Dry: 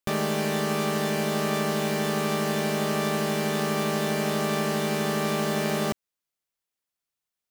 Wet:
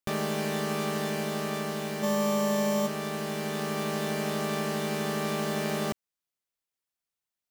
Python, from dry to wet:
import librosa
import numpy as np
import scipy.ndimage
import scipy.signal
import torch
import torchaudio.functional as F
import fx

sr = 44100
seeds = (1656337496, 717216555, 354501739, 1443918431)

y = fx.room_flutter(x, sr, wall_m=4.1, rt60_s=1.5, at=(2.02, 2.86), fade=0.02)
y = fx.rider(y, sr, range_db=10, speed_s=2.0)
y = F.gain(torch.from_numpy(y), -6.0).numpy()